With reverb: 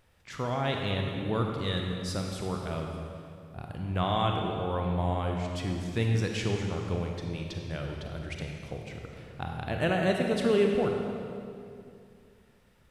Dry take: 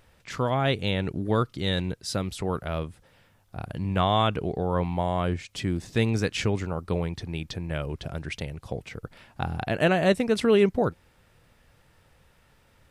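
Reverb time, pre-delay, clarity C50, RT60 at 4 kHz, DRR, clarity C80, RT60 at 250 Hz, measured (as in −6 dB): 2.5 s, 33 ms, 2.5 dB, 2.0 s, 1.5 dB, 3.5 dB, 2.9 s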